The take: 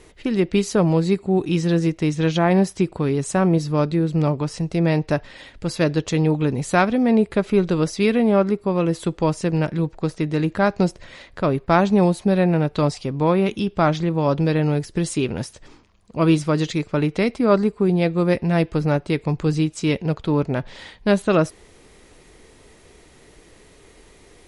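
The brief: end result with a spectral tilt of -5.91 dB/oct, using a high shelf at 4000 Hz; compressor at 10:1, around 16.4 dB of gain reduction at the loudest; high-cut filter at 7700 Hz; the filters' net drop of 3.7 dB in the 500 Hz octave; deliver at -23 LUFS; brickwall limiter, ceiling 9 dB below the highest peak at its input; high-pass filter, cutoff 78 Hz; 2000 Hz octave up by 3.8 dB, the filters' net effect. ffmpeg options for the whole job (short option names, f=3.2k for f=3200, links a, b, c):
-af "highpass=78,lowpass=7.7k,equalizer=f=500:t=o:g=-5,equalizer=f=2k:t=o:g=6,highshelf=f=4k:g=-3,acompressor=threshold=-30dB:ratio=10,volume=13.5dB,alimiter=limit=-13.5dB:level=0:latency=1"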